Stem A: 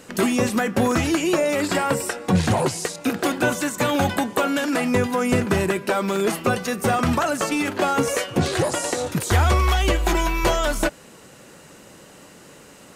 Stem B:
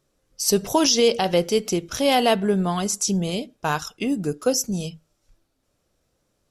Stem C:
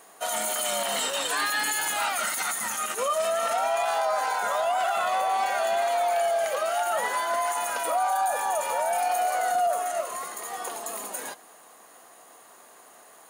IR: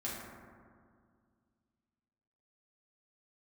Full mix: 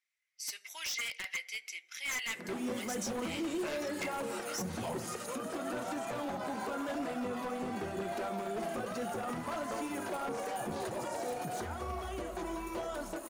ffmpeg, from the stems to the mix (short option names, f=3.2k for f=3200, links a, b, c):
-filter_complex "[0:a]acrossover=split=5500[a][b];[b]acompressor=threshold=-48dB:ratio=4:attack=1:release=60[c];[a][c]amix=inputs=2:normalize=0,equalizer=f=2.7k:t=o:w=2.4:g=-11.5,adelay=2300,volume=-0.5dB,asplit=2[d][e];[e]volume=-20dB[f];[1:a]highpass=f=2.1k:t=q:w=10,volume=-13dB,asplit=3[g][h][i];[h]volume=-21dB[j];[2:a]aeval=exprs='sgn(val(0))*max(abs(val(0))-0.00158,0)':c=same,adelay=2300,volume=-7.5dB,asplit=2[k][l];[l]volume=-19.5dB[m];[i]apad=whole_len=687551[n];[k][n]sidechaincompress=threshold=-38dB:ratio=8:attack=16:release=1070[o];[d][o]amix=inputs=2:normalize=0,alimiter=limit=-24dB:level=0:latency=1:release=100,volume=0dB[p];[3:a]atrim=start_sample=2205[q];[f][j][m]amix=inputs=3:normalize=0[r];[r][q]afir=irnorm=-1:irlink=0[s];[g][p][s]amix=inputs=3:normalize=0,highpass=f=310:p=1,aeval=exprs='0.0473*(abs(mod(val(0)/0.0473+3,4)-2)-1)':c=same,flanger=delay=0.1:depth=7.1:regen=-54:speed=1:shape=triangular"